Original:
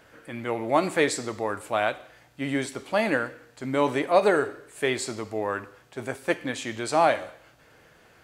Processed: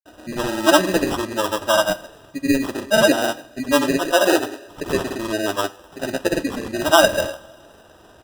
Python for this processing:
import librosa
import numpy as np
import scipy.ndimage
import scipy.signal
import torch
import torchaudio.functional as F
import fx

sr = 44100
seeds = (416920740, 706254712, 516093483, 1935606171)

y = fx.spec_gate(x, sr, threshold_db=-20, keep='strong')
y = y + 0.88 * np.pad(y, (int(3.3 * sr / 1000.0), 0))[:len(y)]
y = fx.sample_hold(y, sr, seeds[0], rate_hz=2200.0, jitter_pct=0)
y = fx.granulator(y, sr, seeds[1], grain_ms=100.0, per_s=20.0, spray_ms=100.0, spread_st=0)
y = fx.rev_double_slope(y, sr, seeds[2], early_s=0.38, late_s=3.4, knee_db=-22, drr_db=13.5)
y = F.gain(torch.from_numpy(y), 6.0).numpy()